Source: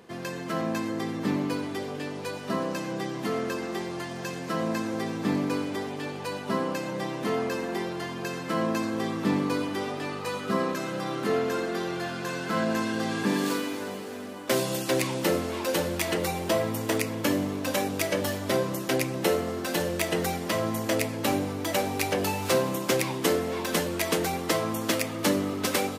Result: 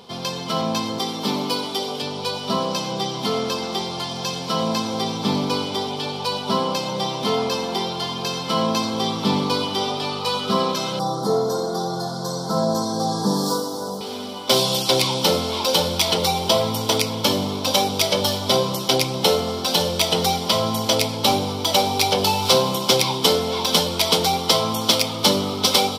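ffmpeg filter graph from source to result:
-filter_complex "[0:a]asettb=1/sr,asplit=3[a][b][c];[a]atrim=end=0.984[d];[b]atrim=start=0.98:end=2.02,asetpts=PTS-STARTPTS,afade=t=in:d=0.004:c=qsin,afade=t=out:st=1.036:d=0.004:c=qsin,highpass=200,highshelf=f=8.7k:g=9[e];[c]atrim=start=2.016[f];[d][e]acrossfade=d=0.004:c1=hsin:c2=qsin[g];[g][f]acrossfade=d=0.004:c1=qsin:c2=hsin,asettb=1/sr,asplit=3[h][i][j];[h]atrim=end=10.994[k];[i]atrim=start=10.99:end=14.01,asetpts=PTS-STARTPTS,afade=t=in:d=0.004:c=qsin,afade=t=out:st=3.016:d=0.004:c=qsin,asuperstop=centerf=2500:order=4:qfactor=0.62,aecho=1:1:6.2:0.49,atrim=end_sample=133182[l];[j]atrim=start=14.006[m];[k][l]acrossfade=d=0.004:c1=hsin:c2=qsin[n];[n][m]acrossfade=d=0.004:c1=qsin:c2=hsin,superequalizer=6b=0.398:9b=1.78:11b=0.316:13b=3.55:14b=3.16,acontrast=53"

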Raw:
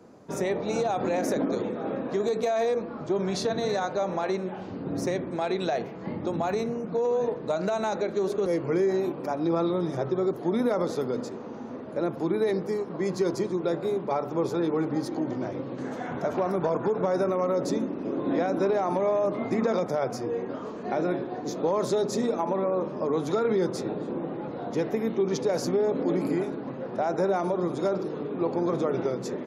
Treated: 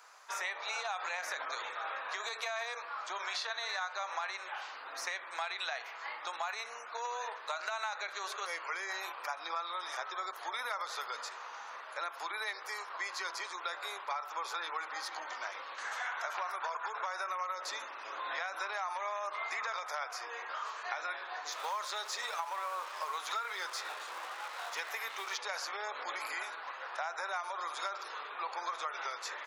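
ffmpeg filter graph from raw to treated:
-filter_complex "[0:a]asettb=1/sr,asplit=3[a][b][c];[a]atrim=end=21.524[d];[b]atrim=start=21.52:end=25.38,asetpts=PTS-STARTPTS,afade=t=in:d=0.004:c=qsin,afade=t=out:st=3.856:d=0.004:c=qsin,aeval=exprs='sgn(val(0))*max(abs(val(0))-0.00355,0)':c=same,highshelf=f=6.5k:g=7[e];[c]atrim=start=25.376[f];[d][e]acrossfade=d=0.004:c1=hsin:c2=qsin[g];[g][f]acrossfade=d=0.004:c1=qsin:c2=hsin,acrossover=split=4000[h][i];[i]acompressor=threshold=-52dB:ratio=4:attack=1:release=60[j];[h][j]amix=inputs=2:normalize=0,highpass=f=1.1k:w=0.5412,highpass=f=1.1k:w=1.3066,acompressor=threshold=-42dB:ratio=6,volume=8dB"

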